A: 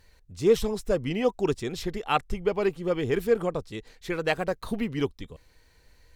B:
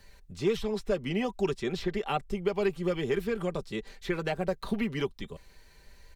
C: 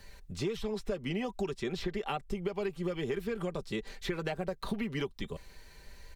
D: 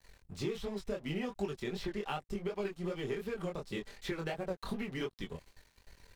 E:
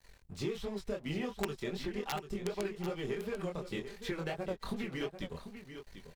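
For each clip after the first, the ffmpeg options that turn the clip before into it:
-filter_complex "[0:a]acrossover=split=170|730|2000|4300[a][b][c][d][e];[a]acompressor=threshold=-44dB:ratio=4[f];[b]acompressor=threshold=-33dB:ratio=4[g];[c]acompressor=threshold=-44dB:ratio=4[h];[d]acompressor=threshold=-45dB:ratio=4[i];[e]acompressor=threshold=-59dB:ratio=4[j];[f][g][h][i][j]amix=inputs=5:normalize=0,aecho=1:1:5.1:0.48,volume=2.5dB"
-af "acompressor=threshold=-34dB:ratio=6,volume=3dB"
-af "aeval=exprs='sgn(val(0))*max(abs(val(0))-0.00299,0)':c=same,flanger=delay=19.5:depth=5.2:speed=2.7,volume=1dB"
-af "aeval=exprs='(mod(16.8*val(0)+1,2)-1)/16.8':c=same,aecho=1:1:742:0.299"

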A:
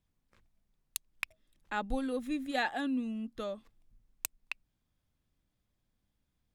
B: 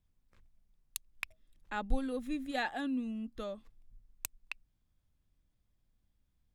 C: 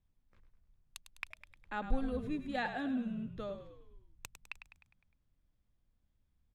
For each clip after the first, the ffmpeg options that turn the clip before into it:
-af "lowshelf=f=85:g=11,volume=-3dB"
-filter_complex "[0:a]aemphasis=mode=reproduction:type=50fm,asplit=7[a][b][c][d][e][f][g];[b]adelay=102,afreqshift=-44,volume=-10dB[h];[c]adelay=204,afreqshift=-88,volume=-15.8dB[i];[d]adelay=306,afreqshift=-132,volume=-21.7dB[j];[e]adelay=408,afreqshift=-176,volume=-27.5dB[k];[f]adelay=510,afreqshift=-220,volume=-33.4dB[l];[g]adelay=612,afreqshift=-264,volume=-39.2dB[m];[a][h][i][j][k][l][m]amix=inputs=7:normalize=0,volume=-1.5dB"

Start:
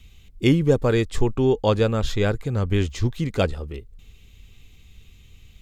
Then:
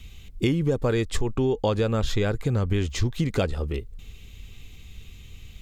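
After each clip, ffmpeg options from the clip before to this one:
-filter_complex "[0:a]asplit=2[a][b];[b]alimiter=limit=-14.5dB:level=0:latency=1,volume=-2dB[c];[a][c]amix=inputs=2:normalize=0,acompressor=threshold=-20dB:ratio=6"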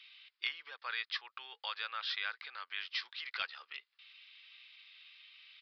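-af "highpass=f=1.3k:w=0.5412,highpass=f=1.3k:w=1.3066,aresample=11025,volume=21.5dB,asoftclip=hard,volume=-21.5dB,aresample=44100,volume=-2dB"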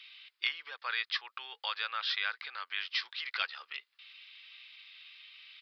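-af "lowshelf=f=180:g=-7.5,volume=4.5dB"

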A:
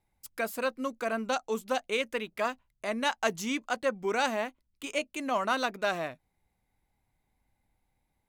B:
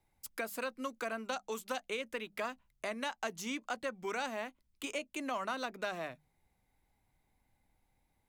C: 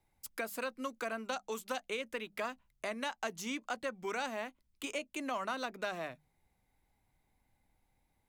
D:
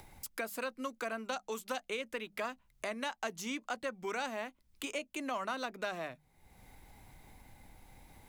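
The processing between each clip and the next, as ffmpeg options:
-filter_complex "[0:a]acrossover=split=250|1000[a][b][c];[a]acompressor=threshold=-54dB:ratio=4[d];[b]acompressor=threshold=-42dB:ratio=4[e];[c]acompressor=threshold=-41dB:ratio=4[f];[d][e][f]amix=inputs=3:normalize=0,bandreject=f=50:t=h:w=6,bandreject=f=100:t=h:w=6,bandreject=f=150:t=h:w=6,bandreject=f=200:t=h:w=6,volume=1dB"
-af anull
-af "acompressor=mode=upward:threshold=-39dB:ratio=2.5"

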